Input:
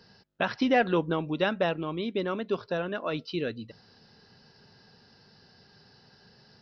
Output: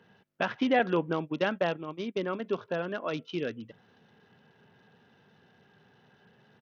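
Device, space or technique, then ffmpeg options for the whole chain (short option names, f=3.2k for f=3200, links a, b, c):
Bluetooth headset: -filter_complex "[0:a]asettb=1/sr,asplit=3[a][b][c];[a]atrim=end=0.794[d];[b]atrim=start=0.79:end=2.4,asetpts=PTS-STARTPTS,afade=t=in:d=0.004:c=qsin,afade=t=out:st=1.606:d=0.004:c=qsin,agate=range=-22dB:threshold=-31dB:ratio=16:detection=peak[e];[c]atrim=start=2.396[f];[d][e]acrossfade=d=0.004:c1=hsin:c2=qsin[g];[g][f]acrossfade=d=0.004:c1=qsin:c2=hsin,highpass=120,aresample=8000,aresample=44100,volume=-1.5dB" -ar 48000 -c:a sbc -b:a 64k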